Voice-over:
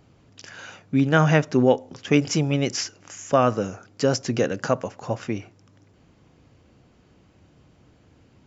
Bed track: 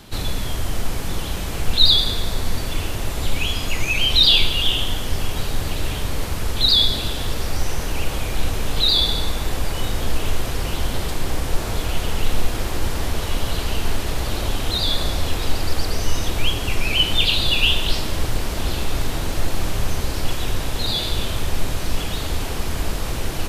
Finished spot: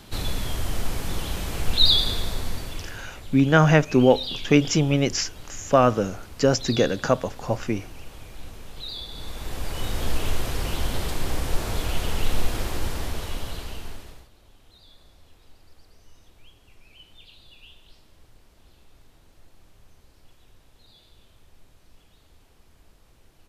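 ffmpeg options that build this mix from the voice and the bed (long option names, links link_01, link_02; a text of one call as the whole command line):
ffmpeg -i stem1.wav -i stem2.wav -filter_complex "[0:a]adelay=2400,volume=1.5dB[link_01];[1:a]volume=11.5dB,afade=type=out:start_time=2.13:duration=0.96:silence=0.177828,afade=type=in:start_time=9.09:duration=0.98:silence=0.177828,afade=type=out:start_time=12.55:duration=1.74:silence=0.0354813[link_02];[link_01][link_02]amix=inputs=2:normalize=0" out.wav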